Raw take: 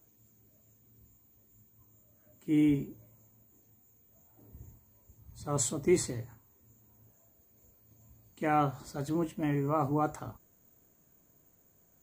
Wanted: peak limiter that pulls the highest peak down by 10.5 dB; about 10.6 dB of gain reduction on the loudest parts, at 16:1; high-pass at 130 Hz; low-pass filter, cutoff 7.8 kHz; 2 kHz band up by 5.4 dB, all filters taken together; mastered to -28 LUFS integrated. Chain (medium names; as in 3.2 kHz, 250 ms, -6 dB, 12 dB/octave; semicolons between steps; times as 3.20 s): high-pass 130 Hz; low-pass 7.8 kHz; peaking EQ 2 kHz +6.5 dB; compression 16:1, threshold -31 dBFS; trim +15.5 dB; peak limiter -17.5 dBFS